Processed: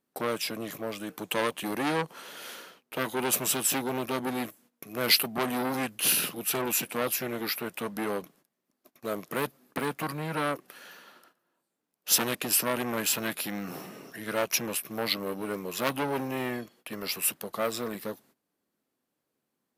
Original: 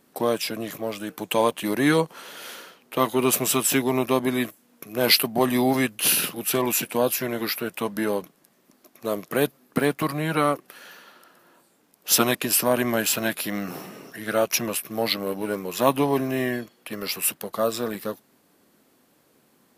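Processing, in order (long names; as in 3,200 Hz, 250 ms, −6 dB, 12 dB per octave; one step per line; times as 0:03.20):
noise gate −52 dBFS, range −17 dB
saturating transformer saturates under 2,800 Hz
level −3.5 dB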